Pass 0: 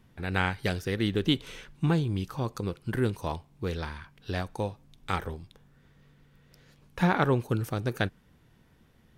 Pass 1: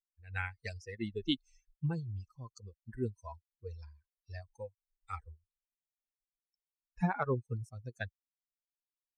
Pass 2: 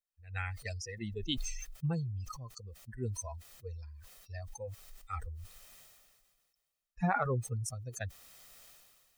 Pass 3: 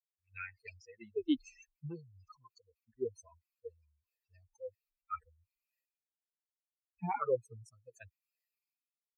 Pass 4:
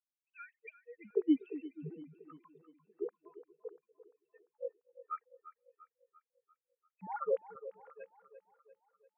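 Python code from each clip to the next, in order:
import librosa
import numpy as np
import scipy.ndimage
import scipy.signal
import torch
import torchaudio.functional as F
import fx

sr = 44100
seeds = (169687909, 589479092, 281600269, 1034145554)

y1 = fx.bin_expand(x, sr, power=3.0)
y1 = scipy.signal.sosfilt(scipy.signal.butter(4, 7700.0, 'lowpass', fs=sr, output='sos'), y1)
y1 = y1 * librosa.db_to_amplitude(-3.5)
y2 = y1 + 0.46 * np.pad(y1, (int(1.6 * sr / 1000.0), 0))[:len(y1)]
y2 = fx.sustainer(y2, sr, db_per_s=32.0)
y2 = y2 * librosa.db_to_amplitude(-1.5)
y3 = fx.bin_expand(y2, sr, power=2.0)
y3 = fx.vowel_sweep(y3, sr, vowels='e-u', hz=1.9)
y3 = y3 * librosa.db_to_amplitude(12.0)
y4 = fx.sine_speech(y3, sr)
y4 = fx.echo_split(y4, sr, split_hz=330.0, low_ms=240, high_ms=345, feedback_pct=52, wet_db=-14.0)
y4 = y4 * librosa.db_to_amplitude(1.0)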